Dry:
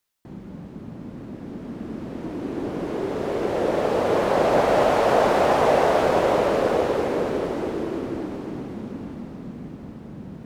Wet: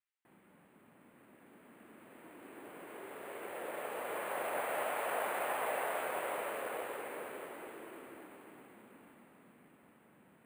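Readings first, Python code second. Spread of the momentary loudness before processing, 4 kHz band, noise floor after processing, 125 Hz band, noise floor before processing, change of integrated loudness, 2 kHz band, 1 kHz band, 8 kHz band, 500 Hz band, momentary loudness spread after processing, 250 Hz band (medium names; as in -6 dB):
19 LU, -16.5 dB, -65 dBFS, -31.5 dB, -40 dBFS, -17.0 dB, -11.0 dB, -16.0 dB, -8.0 dB, -20.5 dB, 21 LU, -25.5 dB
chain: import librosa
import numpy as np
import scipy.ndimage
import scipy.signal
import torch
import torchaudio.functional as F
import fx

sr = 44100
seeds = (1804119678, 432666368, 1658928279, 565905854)

y = scipy.signal.sosfilt(scipy.signal.butter(4, 2500.0, 'lowpass', fs=sr, output='sos'), x)
y = np.diff(y, prepend=0.0)
y = np.repeat(scipy.signal.resample_poly(y, 1, 4), 4)[:len(y)]
y = y * 10.0 ** (2.0 / 20.0)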